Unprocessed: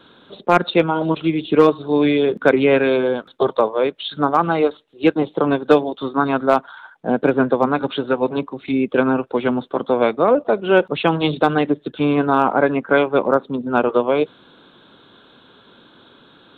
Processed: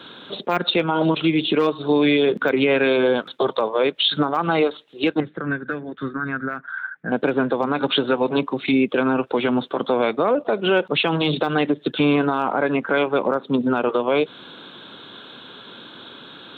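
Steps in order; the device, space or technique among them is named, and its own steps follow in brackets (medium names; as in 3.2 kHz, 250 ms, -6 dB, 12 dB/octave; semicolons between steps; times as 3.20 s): broadcast voice chain (high-pass 100 Hz; de-esser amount 55%; compression 4:1, threshold -20 dBFS, peak gain reduction 11.5 dB; peaking EQ 3.1 kHz +5.5 dB 1.9 oct; peak limiter -15 dBFS, peak gain reduction 8 dB); 5.20–7.12 s: FFT filter 150 Hz 0 dB, 920 Hz -18 dB, 1.6 kHz +6 dB, 3.1 kHz -21 dB; trim +5.5 dB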